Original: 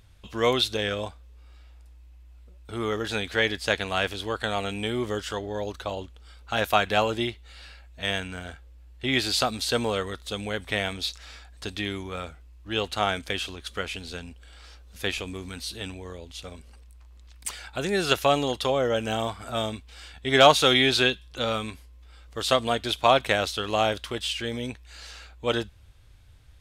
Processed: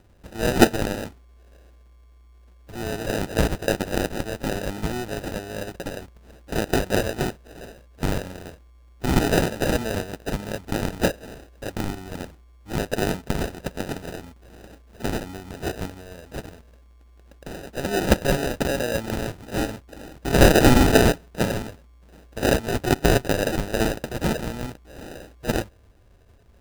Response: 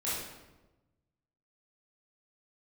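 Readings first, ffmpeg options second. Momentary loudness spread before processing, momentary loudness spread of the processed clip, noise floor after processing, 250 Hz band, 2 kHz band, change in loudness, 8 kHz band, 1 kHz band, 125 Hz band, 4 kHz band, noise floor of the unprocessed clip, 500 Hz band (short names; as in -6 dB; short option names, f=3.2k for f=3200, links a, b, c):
17 LU, 20 LU, -52 dBFS, +7.0 dB, 0.0 dB, +1.5 dB, +4.0 dB, -2.0 dB, +8.5 dB, -6.0 dB, -50 dBFS, +2.0 dB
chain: -af "lowpass=f=3.8k:t=q:w=5.7,acrusher=samples=40:mix=1:aa=0.000001,volume=-2dB"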